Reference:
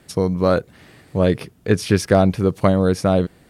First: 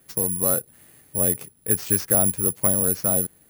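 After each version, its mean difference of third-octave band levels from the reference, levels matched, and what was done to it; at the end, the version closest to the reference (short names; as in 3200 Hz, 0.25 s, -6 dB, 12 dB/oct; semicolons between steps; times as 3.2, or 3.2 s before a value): 7.5 dB: careless resampling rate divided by 4×, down none, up zero stuff; gain -11 dB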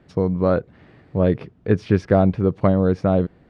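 4.5 dB: tape spacing loss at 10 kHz 33 dB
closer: second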